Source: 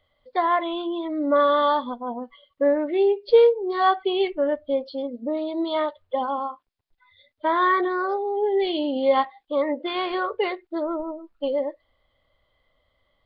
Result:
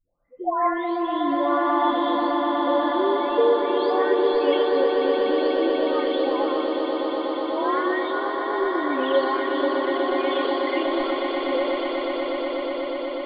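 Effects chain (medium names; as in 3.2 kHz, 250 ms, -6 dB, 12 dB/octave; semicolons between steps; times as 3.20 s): delay that grows with frequency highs late, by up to 998 ms; echo with a slow build-up 122 ms, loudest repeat 8, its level -8 dB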